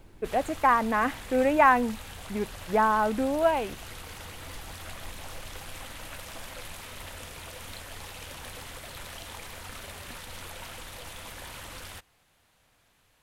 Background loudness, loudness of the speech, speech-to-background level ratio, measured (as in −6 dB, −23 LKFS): −41.5 LKFS, −25.0 LKFS, 16.5 dB